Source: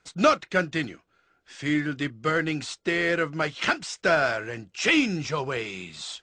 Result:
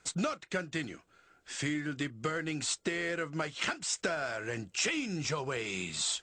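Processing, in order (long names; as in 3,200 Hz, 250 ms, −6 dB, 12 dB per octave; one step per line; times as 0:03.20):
downward compressor 10 to 1, threshold −33 dBFS, peak gain reduction 19.5 dB
parametric band 7,800 Hz +9.5 dB 0.52 octaves
level +2.5 dB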